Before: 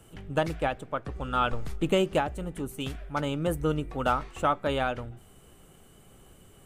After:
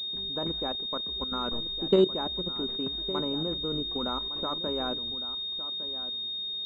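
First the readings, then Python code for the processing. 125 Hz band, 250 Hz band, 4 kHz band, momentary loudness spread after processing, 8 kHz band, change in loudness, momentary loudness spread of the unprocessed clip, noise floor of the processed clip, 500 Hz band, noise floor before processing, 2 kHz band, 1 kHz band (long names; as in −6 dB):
−7.5 dB, −0.5 dB, +13.5 dB, 6 LU, below −15 dB, 0.0 dB, 9 LU, −35 dBFS, −1.0 dB, −55 dBFS, −12.0 dB, −8.0 dB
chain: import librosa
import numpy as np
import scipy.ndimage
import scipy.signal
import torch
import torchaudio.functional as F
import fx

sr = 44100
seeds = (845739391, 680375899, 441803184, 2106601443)

y = fx.peak_eq(x, sr, hz=130.0, db=-9.0, octaves=0.51)
y = fx.small_body(y, sr, hz=(230.0, 370.0, 1000.0), ring_ms=30, db=11)
y = fx.level_steps(y, sr, step_db=14)
y = y + 10.0 ** (-14.0 / 20.0) * np.pad(y, (int(1159 * sr / 1000.0), 0))[:len(y)]
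y = fx.pwm(y, sr, carrier_hz=3700.0)
y = y * 10.0 ** (-4.0 / 20.0)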